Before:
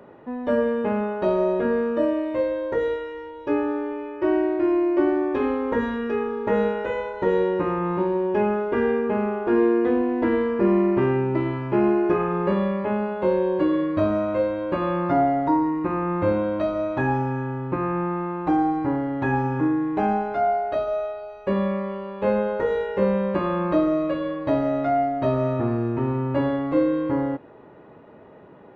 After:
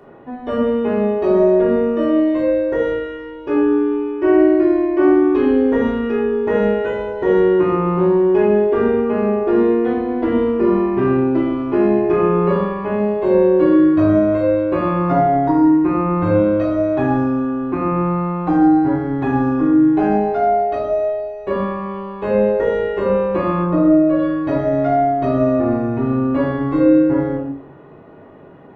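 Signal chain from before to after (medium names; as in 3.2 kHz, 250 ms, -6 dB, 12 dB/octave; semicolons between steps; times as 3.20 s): 23.62–24.18 s: low-pass 1.1 kHz -> 1.6 kHz 6 dB/octave; simulated room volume 840 m³, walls furnished, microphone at 3.4 m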